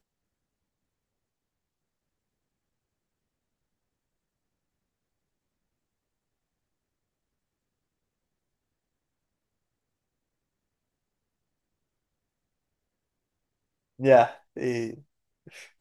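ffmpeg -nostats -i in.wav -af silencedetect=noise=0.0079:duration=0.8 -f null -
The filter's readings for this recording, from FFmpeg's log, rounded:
silence_start: 0.00
silence_end: 13.99 | silence_duration: 13.99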